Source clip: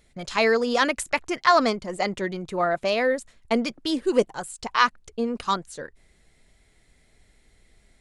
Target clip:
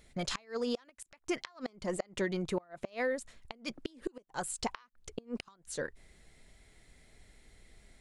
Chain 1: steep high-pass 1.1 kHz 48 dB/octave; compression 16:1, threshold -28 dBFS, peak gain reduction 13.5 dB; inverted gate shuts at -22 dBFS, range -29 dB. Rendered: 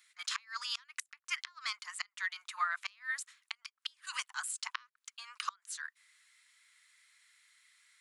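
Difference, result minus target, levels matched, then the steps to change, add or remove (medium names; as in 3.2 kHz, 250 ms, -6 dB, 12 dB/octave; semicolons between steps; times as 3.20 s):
1 kHz band +3.5 dB
remove: steep high-pass 1.1 kHz 48 dB/octave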